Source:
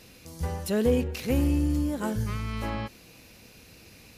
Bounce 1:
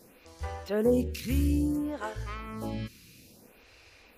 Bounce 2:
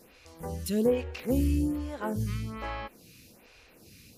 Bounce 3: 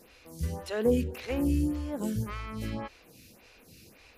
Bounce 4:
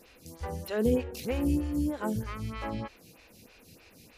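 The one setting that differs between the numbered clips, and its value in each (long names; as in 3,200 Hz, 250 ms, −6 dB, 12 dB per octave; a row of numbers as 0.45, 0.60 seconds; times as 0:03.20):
phaser with staggered stages, speed: 0.59, 1.2, 1.8, 3.2 Hertz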